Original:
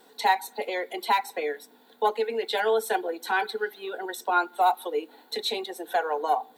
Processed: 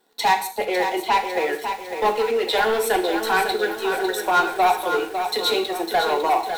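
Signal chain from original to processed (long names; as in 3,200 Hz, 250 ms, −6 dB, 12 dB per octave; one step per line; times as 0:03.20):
0:00.68–0:01.49: low-pass filter 3,000 Hz 12 dB per octave
leveller curve on the samples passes 3
reverb whose tail is shaped and stops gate 200 ms falling, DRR 5.5 dB
feedback echo at a low word length 552 ms, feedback 55%, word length 6 bits, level −7 dB
level −4 dB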